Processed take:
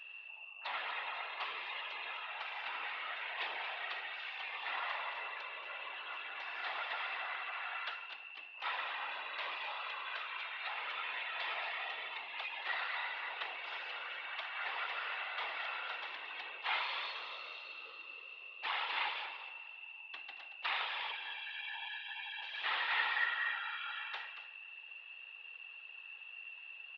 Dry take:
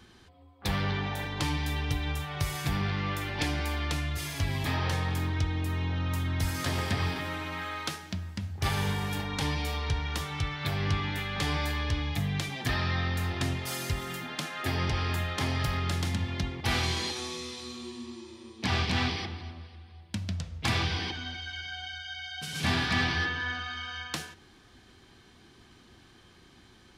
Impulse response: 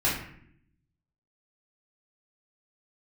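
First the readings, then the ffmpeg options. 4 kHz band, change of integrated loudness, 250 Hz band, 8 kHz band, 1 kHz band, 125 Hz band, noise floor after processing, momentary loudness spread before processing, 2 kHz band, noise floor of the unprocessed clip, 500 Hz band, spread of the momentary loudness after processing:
-7.5 dB, -8.5 dB, under -35 dB, under -35 dB, -5.0 dB, under -40 dB, -52 dBFS, 9 LU, -3.5 dB, -57 dBFS, -13.5 dB, 12 LU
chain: -filter_complex "[0:a]highpass=f=540:t=q:w=0.5412,highpass=f=540:t=q:w=1.307,lowpass=f=3400:t=q:w=0.5176,lowpass=f=3400:t=q:w=0.7071,lowpass=f=3400:t=q:w=1.932,afreqshift=140,aecho=1:1:229:0.266,asplit=2[s0][s1];[1:a]atrim=start_sample=2205[s2];[s1][s2]afir=irnorm=-1:irlink=0,volume=0.1[s3];[s0][s3]amix=inputs=2:normalize=0,aeval=exprs='val(0)+0.00794*sin(2*PI*2700*n/s)':c=same,afftfilt=real='hypot(re,im)*cos(2*PI*random(0))':imag='hypot(re,im)*sin(2*PI*random(1))':win_size=512:overlap=0.75"

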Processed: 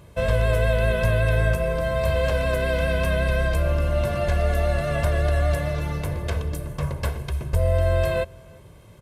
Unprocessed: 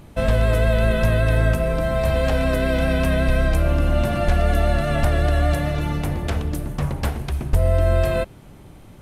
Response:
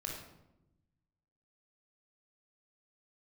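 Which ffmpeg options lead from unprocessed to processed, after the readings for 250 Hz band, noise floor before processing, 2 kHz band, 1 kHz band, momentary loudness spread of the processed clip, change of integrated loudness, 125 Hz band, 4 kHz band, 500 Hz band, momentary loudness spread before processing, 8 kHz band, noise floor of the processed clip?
-7.5 dB, -44 dBFS, -1.0 dB, -3.5 dB, 7 LU, -2.5 dB, -2.5 dB, -2.5 dB, -1.5 dB, 7 LU, -2.5 dB, -47 dBFS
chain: -filter_complex "[0:a]highpass=56,aecho=1:1:1.9:0.62,asplit=2[s0][s1];[s1]adelay=349.9,volume=0.0447,highshelf=f=4000:g=-7.87[s2];[s0][s2]amix=inputs=2:normalize=0,volume=0.631"

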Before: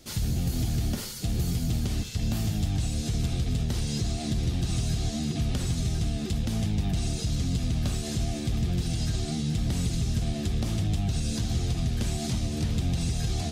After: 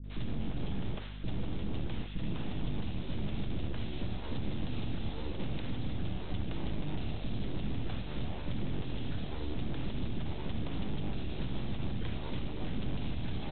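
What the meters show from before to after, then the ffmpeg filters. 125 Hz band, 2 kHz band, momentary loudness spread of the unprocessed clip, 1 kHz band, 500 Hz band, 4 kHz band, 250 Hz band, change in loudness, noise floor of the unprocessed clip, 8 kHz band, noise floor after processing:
-11.0 dB, -5.0 dB, 2 LU, -4.5 dB, -4.5 dB, -10.0 dB, -7.5 dB, -10.0 dB, -34 dBFS, under -40 dB, -38 dBFS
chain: -filter_complex "[0:a]aresample=8000,aeval=exprs='abs(val(0))':c=same,aresample=44100,aeval=exprs='val(0)+0.0141*(sin(2*PI*50*n/s)+sin(2*PI*2*50*n/s)/2+sin(2*PI*3*50*n/s)/3+sin(2*PI*4*50*n/s)/4+sin(2*PI*5*50*n/s)/5)':c=same,acrossover=split=450[s0][s1];[s1]adelay=40[s2];[s0][s2]amix=inputs=2:normalize=0,volume=0.562"

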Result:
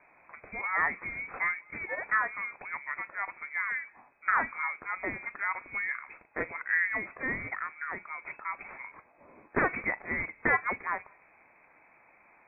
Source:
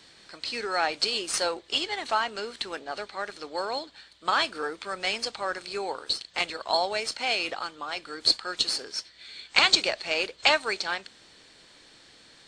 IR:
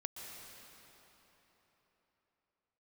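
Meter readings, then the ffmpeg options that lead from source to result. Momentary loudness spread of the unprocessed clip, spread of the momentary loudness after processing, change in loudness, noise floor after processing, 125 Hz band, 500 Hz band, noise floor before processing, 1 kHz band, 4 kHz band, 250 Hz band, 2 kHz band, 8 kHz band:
12 LU, 11 LU, -4.5 dB, -62 dBFS, +4.5 dB, -9.5 dB, -55 dBFS, -4.0 dB, under -40 dB, -2.0 dB, +1.0 dB, under -40 dB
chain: -filter_complex "[0:a]asplit=2[s0][s1];[1:a]atrim=start_sample=2205,afade=t=out:st=0.21:d=0.01,atrim=end_sample=9702,adelay=43[s2];[s1][s2]afir=irnorm=-1:irlink=0,volume=0.15[s3];[s0][s3]amix=inputs=2:normalize=0,lowpass=f=2200:t=q:w=0.5098,lowpass=f=2200:t=q:w=0.6013,lowpass=f=2200:t=q:w=0.9,lowpass=f=2200:t=q:w=2.563,afreqshift=-2600,volume=0.841"

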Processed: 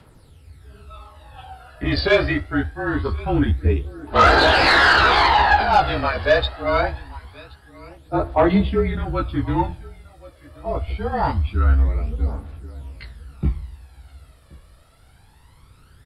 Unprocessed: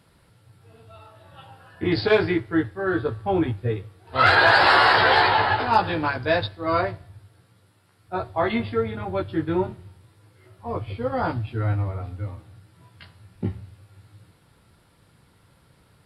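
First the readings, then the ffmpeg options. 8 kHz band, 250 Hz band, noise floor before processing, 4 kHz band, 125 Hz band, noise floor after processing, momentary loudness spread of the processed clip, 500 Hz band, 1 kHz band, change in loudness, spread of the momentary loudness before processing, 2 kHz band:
no reading, +3.0 dB, -60 dBFS, +3.5 dB, +5.5 dB, -51 dBFS, 16 LU, +2.5 dB, +3.0 dB, +3.0 dB, 17 LU, +2.0 dB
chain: -af "afreqshift=-35,aecho=1:1:1077|2154:0.0794|0.0143,aphaser=in_gain=1:out_gain=1:delay=1.8:decay=0.58:speed=0.24:type=triangular,aeval=exprs='0.841*(cos(1*acos(clip(val(0)/0.841,-1,1)))-cos(1*PI/2))+0.0944*(cos(5*acos(clip(val(0)/0.841,-1,1)))-cos(5*PI/2))':c=same,volume=0.891"

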